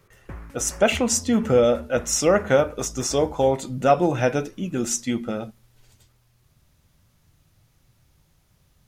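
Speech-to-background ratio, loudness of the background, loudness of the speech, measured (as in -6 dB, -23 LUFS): 19.5 dB, -41.5 LUFS, -22.0 LUFS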